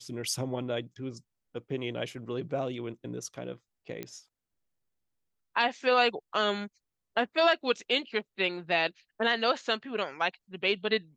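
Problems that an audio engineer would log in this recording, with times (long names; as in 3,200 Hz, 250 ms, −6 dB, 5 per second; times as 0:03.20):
0:04.03: click −21 dBFS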